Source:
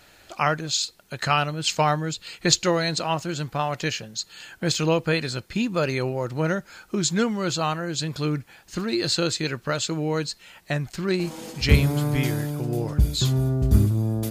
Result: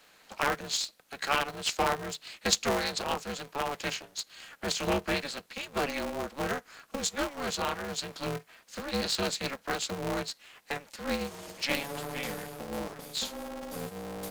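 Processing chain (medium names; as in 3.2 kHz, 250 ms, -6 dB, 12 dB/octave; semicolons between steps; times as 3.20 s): Chebyshev high-pass 300 Hz, order 10; polarity switched at an audio rate 140 Hz; trim -5.5 dB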